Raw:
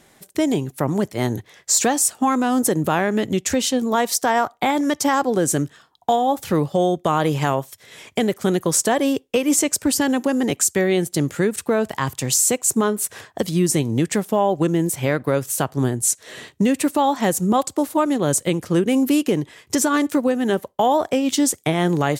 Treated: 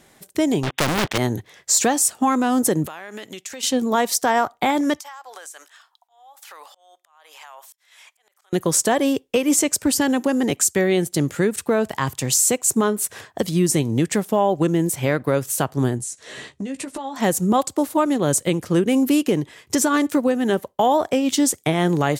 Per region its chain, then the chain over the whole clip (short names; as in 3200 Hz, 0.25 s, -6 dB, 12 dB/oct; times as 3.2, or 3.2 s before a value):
0.63–1.18 brick-wall FIR low-pass 3800 Hz + sample leveller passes 5 + spectral compressor 2:1
2.86–3.63 HPF 1300 Hz 6 dB/oct + compressor 12:1, threshold -29 dBFS
5–8.53 HPF 790 Hz 24 dB/oct + compressor 16:1, threshold -34 dBFS + auto swell 0.587 s
15.98–17.16 LPF 10000 Hz 24 dB/oct + compressor 8:1, threshold -27 dBFS + doubler 15 ms -7 dB
whole clip: dry